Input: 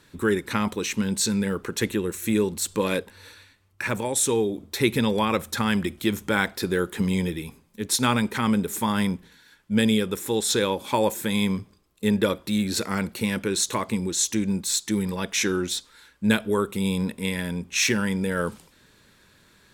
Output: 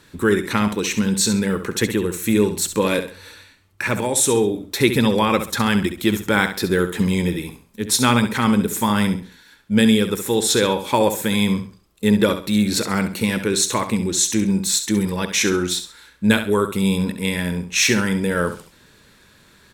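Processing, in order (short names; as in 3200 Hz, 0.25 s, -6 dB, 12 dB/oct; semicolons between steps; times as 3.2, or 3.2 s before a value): feedback echo 67 ms, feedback 29%, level -10 dB; gain +5 dB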